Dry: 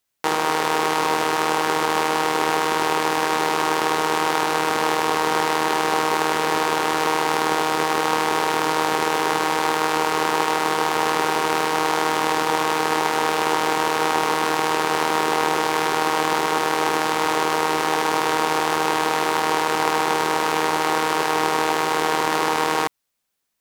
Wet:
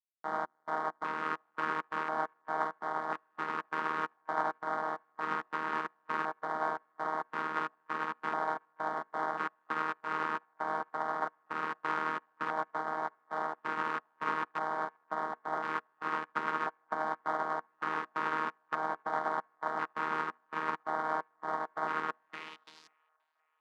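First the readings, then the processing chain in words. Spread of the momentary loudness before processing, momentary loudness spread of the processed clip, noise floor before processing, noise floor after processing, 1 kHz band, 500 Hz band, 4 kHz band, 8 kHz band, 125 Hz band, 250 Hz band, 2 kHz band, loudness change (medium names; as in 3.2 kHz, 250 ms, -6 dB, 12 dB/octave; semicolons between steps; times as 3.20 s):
0 LU, 4 LU, -23 dBFS, -74 dBFS, -14.0 dB, -18.0 dB, -27.5 dB, under -35 dB, -19.0 dB, -19.0 dB, -14.0 dB, -15.0 dB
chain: tilt EQ -3.5 dB/octave; small resonant body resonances 210/650 Hz, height 15 dB, ringing for 40 ms; LFO notch square 0.48 Hz 710–2600 Hz; treble shelf 3.4 kHz +6.5 dB; trance gate ".xxx..xx" 133 bpm -24 dB; peak limiter -8.5 dBFS, peak gain reduction 9 dB; band-pass sweep 1.4 kHz -> 7.4 kHz, 22.11–23.05 s; hum notches 60/120/180/240/300/360/420/480 Hz; on a send: feedback echo behind a band-pass 528 ms, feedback 57%, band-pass 1.2 kHz, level -15 dB; on the sum: upward expansion 2.5:1, over -44 dBFS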